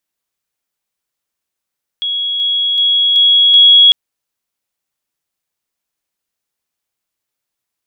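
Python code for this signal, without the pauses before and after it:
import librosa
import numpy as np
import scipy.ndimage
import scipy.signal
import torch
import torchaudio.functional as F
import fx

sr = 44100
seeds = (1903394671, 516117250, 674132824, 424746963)

y = fx.level_ladder(sr, hz=3330.0, from_db=-15.0, step_db=3.0, steps=5, dwell_s=0.38, gap_s=0.0)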